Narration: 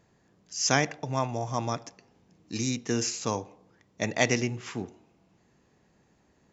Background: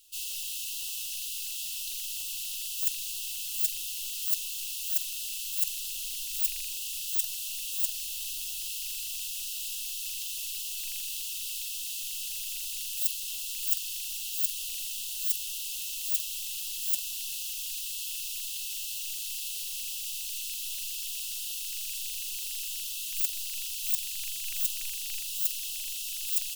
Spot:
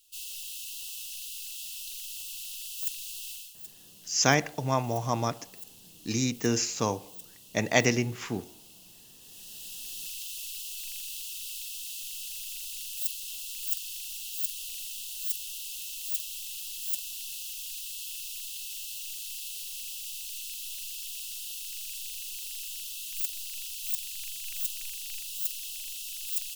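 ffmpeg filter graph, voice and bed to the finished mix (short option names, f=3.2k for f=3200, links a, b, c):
-filter_complex "[0:a]adelay=3550,volume=1.5dB[a];[1:a]volume=10.5dB,afade=t=out:st=3.31:d=0.23:silence=0.211349,afade=t=in:st=9.21:d=0.79:silence=0.188365[b];[a][b]amix=inputs=2:normalize=0"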